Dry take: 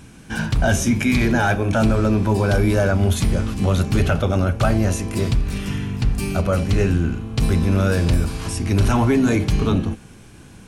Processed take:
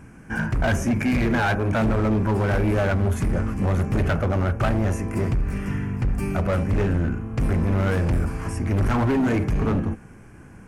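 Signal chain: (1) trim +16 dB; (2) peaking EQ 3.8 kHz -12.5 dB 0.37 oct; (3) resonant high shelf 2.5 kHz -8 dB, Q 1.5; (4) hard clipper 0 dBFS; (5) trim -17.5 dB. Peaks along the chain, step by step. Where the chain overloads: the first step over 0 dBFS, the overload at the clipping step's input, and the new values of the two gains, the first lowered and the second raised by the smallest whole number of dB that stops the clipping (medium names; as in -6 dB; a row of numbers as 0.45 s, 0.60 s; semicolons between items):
+6.5 dBFS, +6.5 dBFS, +7.5 dBFS, 0.0 dBFS, -17.5 dBFS; step 1, 7.5 dB; step 1 +8 dB, step 5 -9.5 dB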